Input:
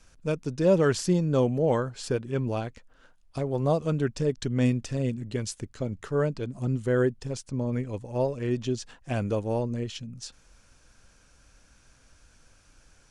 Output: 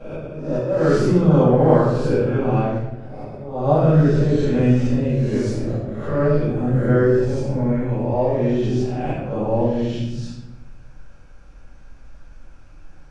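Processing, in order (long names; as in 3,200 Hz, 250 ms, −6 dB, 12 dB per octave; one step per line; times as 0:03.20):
peak hold with a rise ahead of every peak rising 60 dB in 1.01 s
volume swells 350 ms
low-pass filter 1,300 Hz 6 dB per octave
mains-hum notches 60/120 Hz
rectangular room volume 340 cubic metres, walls mixed, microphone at 6.6 metres
level −7.5 dB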